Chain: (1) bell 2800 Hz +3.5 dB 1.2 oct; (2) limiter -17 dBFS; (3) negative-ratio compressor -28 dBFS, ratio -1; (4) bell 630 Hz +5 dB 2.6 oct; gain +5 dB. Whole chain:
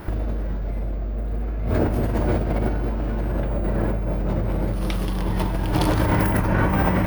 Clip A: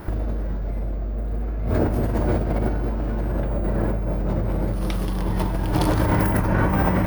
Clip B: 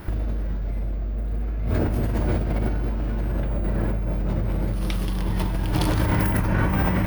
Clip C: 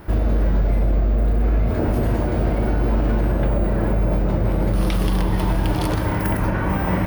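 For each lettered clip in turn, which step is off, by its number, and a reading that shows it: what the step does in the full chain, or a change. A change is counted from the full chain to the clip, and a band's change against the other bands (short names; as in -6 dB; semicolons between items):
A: 1, 4 kHz band -2.5 dB; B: 4, momentary loudness spread change -1 LU; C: 3, crest factor change -5.5 dB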